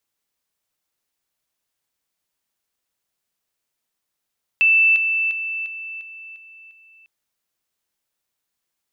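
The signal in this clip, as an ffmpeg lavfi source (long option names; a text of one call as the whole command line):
ffmpeg -f lavfi -i "aevalsrc='pow(10,(-11.5-6*floor(t/0.35))/20)*sin(2*PI*2650*t)':duration=2.45:sample_rate=44100" out.wav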